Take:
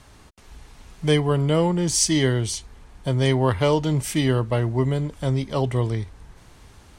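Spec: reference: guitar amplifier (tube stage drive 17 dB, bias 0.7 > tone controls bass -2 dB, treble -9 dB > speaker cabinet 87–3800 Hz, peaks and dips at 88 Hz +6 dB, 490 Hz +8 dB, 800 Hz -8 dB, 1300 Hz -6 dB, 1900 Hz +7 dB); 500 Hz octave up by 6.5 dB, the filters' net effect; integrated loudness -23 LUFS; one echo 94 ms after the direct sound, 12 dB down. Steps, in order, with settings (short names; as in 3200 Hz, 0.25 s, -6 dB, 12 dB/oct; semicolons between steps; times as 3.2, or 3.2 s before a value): bell 500 Hz +3 dB; echo 94 ms -12 dB; tube stage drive 17 dB, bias 0.7; tone controls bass -2 dB, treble -9 dB; speaker cabinet 87–3800 Hz, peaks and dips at 88 Hz +6 dB, 490 Hz +8 dB, 800 Hz -8 dB, 1300 Hz -6 dB, 1900 Hz +7 dB; gain +2.5 dB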